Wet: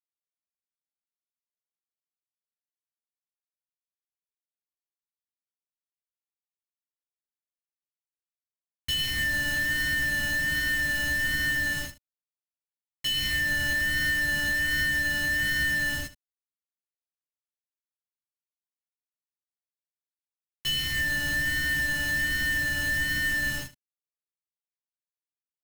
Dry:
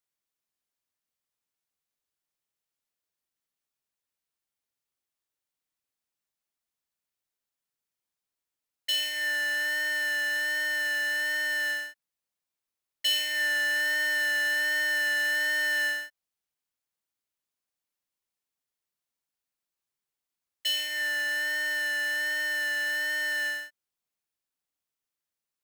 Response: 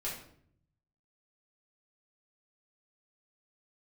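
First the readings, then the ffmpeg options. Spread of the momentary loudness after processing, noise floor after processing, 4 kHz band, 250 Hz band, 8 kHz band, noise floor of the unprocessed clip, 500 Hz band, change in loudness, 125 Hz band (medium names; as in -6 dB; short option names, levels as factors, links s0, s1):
5 LU, under -85 dBFS, 0.0 dB, +13.0 dB, +2.0 dB, under -85 dBFS, -3.5 dB, +1.0 dB, no reading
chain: -filter_complex "[0:a]asplit=2[s0][s1];[s1]adelay=149,lowpass=f=3600:p=1,volume=0.106,asplit=2[s2][s3];[s3]adelay=149,lowpass=f=3600:p=1,volume=0.49,asplit=2[s4][s5];[s5]adelay=149,lowpass=f=3600:p=1,volume=0.49,asplit=2[s6][s7];[s7]adelay=149,lowpass=f=3600:p=1,volume=0.49[s8];[s2][s4][s6][s8]amix=inputs=4:normalize=0[s9];[s0][s9]amix=inputs=2:normalize=0,acrusher=bits=5:mix=0:aa=0.000001,bass=f=250:g=12,treble=f=4000:g=-1,asplit=2[s10][s11];[s11]aecho=0:1:14|76:0.596|0.188[s12];[s10][s12]amix=inputs=2:normalize=0,alimiter=limit=0.112:level=0:latency=1:release=93,asubboost=boost=4.5:cutoff=220"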